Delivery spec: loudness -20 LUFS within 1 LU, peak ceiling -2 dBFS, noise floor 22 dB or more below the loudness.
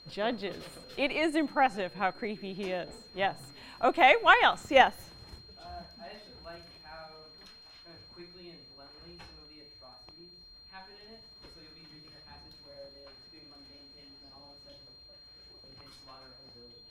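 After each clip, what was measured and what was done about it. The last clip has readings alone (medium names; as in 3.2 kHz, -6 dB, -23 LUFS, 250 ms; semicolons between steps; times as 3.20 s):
steady tone 4.2 kHz; tone level -52 dBFS; loudness -27.0 LUFS; peak level -7.0 dBFS; loudness target -20.0 LUFS
-> band-stop 4.2 kHz, Q 30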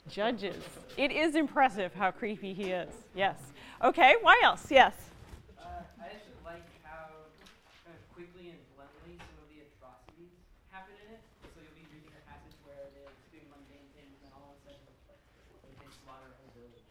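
steady tone not found; loudness -27.0 LUFS; peak level -7.0 dBFS; loudness target -20.0 LUFS
-> trim +7 dB; peak limiter -2 dBFS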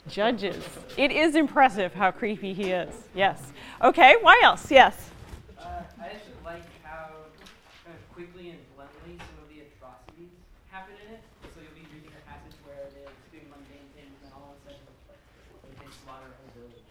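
loudness -20.5 LUFS; peak level -2.0 dBFS; noise floor -56 dBFS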